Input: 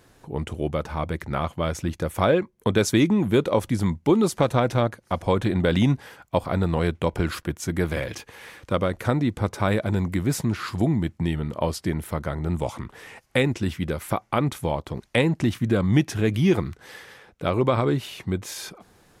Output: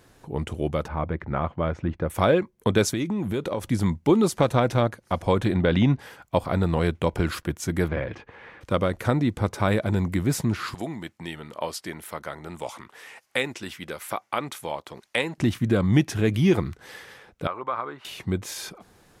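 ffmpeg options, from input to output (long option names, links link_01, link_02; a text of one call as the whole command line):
ffmpeg -i in.wav -filter_complex "[0:a]asettb=1/sr,asplit=3[link_01][link_02][link_03];[link_01]atrim=end=0.884[link_04];[link_02]atrim=start=0.88:end=2.1,asetpts=PTS-STARTPTS,afade=type=in:duration=0.004:curve=qsin,afade=type=out:start_time=1.216:duration=0.004:curve=qsin,lowpass=1900[link_05];[link_03]atrim=start=2.096[link_06];[link_04][link_05]acrossfade=duration=0.004:curve1=hsin:curve2=qsin[link_07];[link_07][link_06]acrossfade=duration=0.004:curve1=qsin:curve2=hsin,asettb=1/sr,asplit=3[link_08][link_09][link_10];[link_08]atrim=end=2.894[link_11];[link_09]atrim=start=2.89:end=3.64,asetpts=PTS-STARTPTS,afade=type=in:duration=0.004:curve=qsin,afade=type=out:start_time=0.746:duration=0.004:curve=qsin,acompressor=threshold=-24dB:ratio=4:attack=3.2:release=140:knee=1:detection=peak[link_12];[link_10]atrim=start=3.636[link_13];[link_11][link_12]acrossfade=duration=0.004:curve1=hsin:curve2=qsin[link_14];[link_14][link_13]acrossfade=duration=0.004:curve1=qsin:curve2=hsin,asettb=1/sr,asplit=3[link_15][link_16][link_17];[link_15]atrim=end=5.564[link_18];[link_16]atrim=start=5.56:end=5.99,asetpts=PTS-STARTPTS,afade=type=in:duration=0.004:curve=qsin,afade=type=out:start_time=0.426:duration=0.004:curve=qsin,lowpass=3900[link_19];[link_17]atrim=start=5.986[link_20];[link_18][link_19]acrossfade=duration=0.004:curve1=hsin:curve2=qsin[link_21];[link_21][link_20]acrossfade=duration=0.004:curve1=qsin:curve2=hsin,asettb=1/sr,asplit=3[link_22][link_23][link_24];[link_22]atrim=end=7.884[link_25];[link_23]atrim=start=7.88:end=8.61,asetpts=PTS-STARTPTS,afade=type=in:duration=0.004:curve=qsin,afade=type=out:start_time=0.726:duration=0.004:curve=qsin,lowpass=2000[link_26];[link_24]atrim=start=8.606[link_27];[link_25][link_26]acrossfade=duration=0.004:curve1=hsin:curve2=qsin[link_28];[link_28][link_27]acrossfade=duration=0.004:curve1=qsin:curve2=hsin,asettb=1/sr,asplit=3[link_29][link_30][link_31];[link_29]atrim=end=10.744[link_32];[link_30]atrim=start=10.74:end=15.38,asetpts=PTS-STARTPTS,afade=type=in:duration=0.004:curve=qsin,afade=type=out:start_time=4.636:duration=0.004:curve=qsin,highpass=frequency=840:poles=1[link_33];[link_31]atrim=start=15.376[link_34];[link_32][link_33]acrossfade=duration=0.004:curve1=hsin:curve2=qsin[link_35];[link_35][link_34]acrossfade=duration=0.004:curve1=qsin:curve2=hsin,asettb=1/sr,asplit=3[link_36][link_37][link_38];[link_36]atrim=end=17.474[link_39];[link_37]atrim=start=17.47:end=18.05,asetpts=PTS-STARTPTS,afade=type=in:duration=0.004:curve=qsin,afade=type=out:start_time=0.576:duration=0.004:curve=qsin,bandpass=frequency=1200:width_type=q:width=2.1[link_40];[link_38]atrim=start=18.046[link_41];[link_39][link_40]acrossfade=duration=0.004:curve1=hsin:curve2=qsin[link_42];[link_42][link_41]acrossfade=duration=0.004:curve1=qsin:curve2=hsin" out.wav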